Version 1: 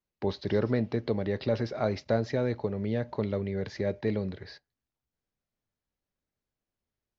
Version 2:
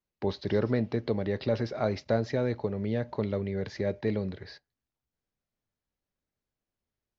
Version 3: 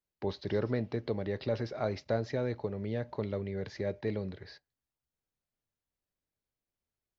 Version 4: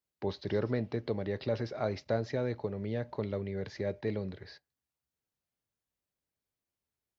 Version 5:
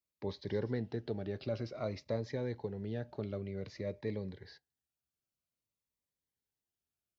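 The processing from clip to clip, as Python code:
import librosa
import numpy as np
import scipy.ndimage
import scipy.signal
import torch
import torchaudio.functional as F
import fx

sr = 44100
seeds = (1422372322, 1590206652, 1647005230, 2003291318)

y1 = x
y2 = fx.peak_eq(y1, sr, hz=220.0, db=-3.0, octaves=0.35)
y2 = F.gain(torch.from_numpy(y2), -4.0).numpy()
y3 = scipy.signal.sosfilt(scipy.signal.butter(2, 49.0, 'highpass', fs=sr, output='sos'), y2)
y4 = fx.notch_cascade(y3, sr, direction='falling', hz=0.53)
y4 = F.gain(torch.from_numpy(y4), -3.5).numpy()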